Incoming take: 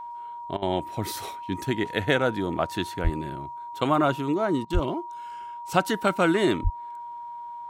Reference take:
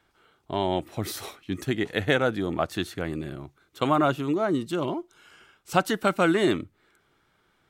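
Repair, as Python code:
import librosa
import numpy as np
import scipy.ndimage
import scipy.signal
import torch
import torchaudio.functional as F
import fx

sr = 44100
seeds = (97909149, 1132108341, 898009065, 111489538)

y = fx.notch(x, sr, hz=950.0, q=30.0)
y = fx.highpass(y, sr, hz=140.0, slope=24, at=(3.03, 3.15), fade=0.02)
y = fx.highpass(y, sr, hz=140.0, slope=24, at=(4.73, 4.85), fade=0.02)
y = fx.highpass(y, sr, hz=140.0, slope=24, at=(6.63, 6.75), fade=0.02)
y = fx.fix_interpolate(y, sr, at_s=(0.57, 4.65), length_ms=50.0)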